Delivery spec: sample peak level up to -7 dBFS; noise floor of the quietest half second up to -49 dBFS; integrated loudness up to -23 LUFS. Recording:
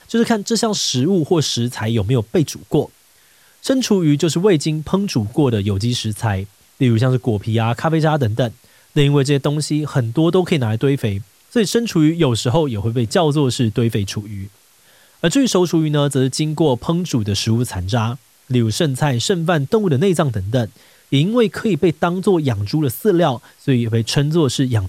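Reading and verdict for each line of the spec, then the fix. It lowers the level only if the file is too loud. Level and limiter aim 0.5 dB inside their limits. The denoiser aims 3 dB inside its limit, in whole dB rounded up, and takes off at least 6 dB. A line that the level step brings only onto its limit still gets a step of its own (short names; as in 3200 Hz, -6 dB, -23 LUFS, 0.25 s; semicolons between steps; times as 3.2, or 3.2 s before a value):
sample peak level -4.5 dBFS: fail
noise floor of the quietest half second -52 dBFS: OK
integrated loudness -18.0 LUFS: fail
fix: gain -5.5 dB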